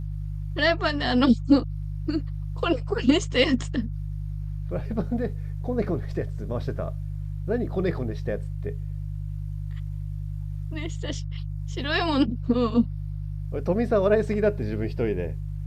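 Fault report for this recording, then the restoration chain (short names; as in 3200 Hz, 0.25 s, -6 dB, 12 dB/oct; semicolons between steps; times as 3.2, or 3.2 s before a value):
hum 50 Hz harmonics 3 -31 dBFS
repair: de-hum 50 Hz, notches 3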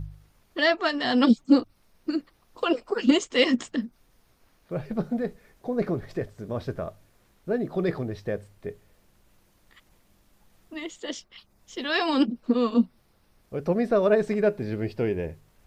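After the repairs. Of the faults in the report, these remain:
none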